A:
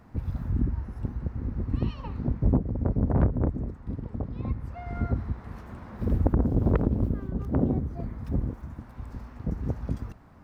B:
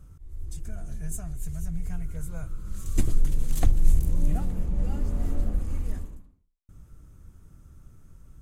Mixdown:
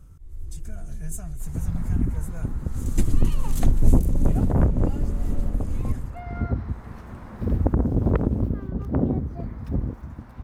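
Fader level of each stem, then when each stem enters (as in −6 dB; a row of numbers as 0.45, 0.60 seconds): +2.0, +1.0 decibels; 1.40, 0.00 seconds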